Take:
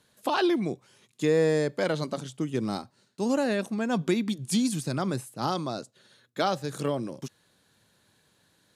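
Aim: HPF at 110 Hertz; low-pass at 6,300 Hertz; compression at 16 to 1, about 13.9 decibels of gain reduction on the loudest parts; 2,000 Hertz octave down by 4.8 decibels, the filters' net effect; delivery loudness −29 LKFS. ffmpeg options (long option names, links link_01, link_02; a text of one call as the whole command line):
ffmpeg -i in.wav -af "highpass=110,lowpass=6300,equalizer=frequency=2000:width_type=o:gain=-6.5,acompressor=threshold=-34dB:ratio=16,volume=11dB" out.wav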